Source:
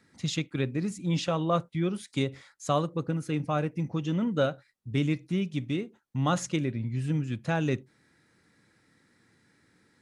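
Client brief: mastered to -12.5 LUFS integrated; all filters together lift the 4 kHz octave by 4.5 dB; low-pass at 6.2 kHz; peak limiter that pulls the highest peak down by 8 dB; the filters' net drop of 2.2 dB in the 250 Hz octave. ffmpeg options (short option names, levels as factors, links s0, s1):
-af "lowpass=6200,equalizer=f=250:t=o:g=-3.5,equalizer=f=4000:t=o:g=6,volume=10,alimiter=limit=1:level=0:latency=1"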